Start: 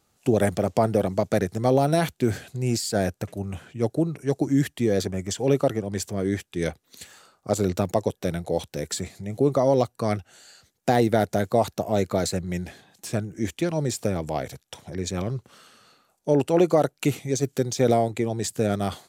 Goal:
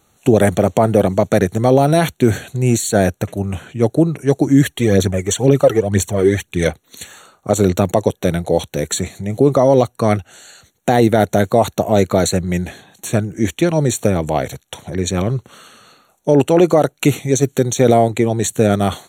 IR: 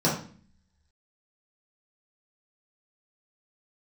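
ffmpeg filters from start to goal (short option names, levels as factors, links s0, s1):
-filter_complex "[0:a]asplit=3[s0][s1][s2];[s0]afade=t=out:st=4.62:d=0.02[s3];[s1]aphaser=in_gain=1:out_gain=1:delay=2.8:decay=0.59:speed=2:type=triangular,afade=t=in:st=4.62:d=0.02,afade=t=out:st=6.66:d=0.02[s4];[s2]afade=t=in:st=6.66:d=0.02[s5];[s3][s4][s5]amix=inputs=3:normalize=0,asuperstop=centerf=5000:order=20:qfactor=4.1,alimiter=level_in=3.55:limit=0.891:release=50:level=0:latency=1,volume=0.891"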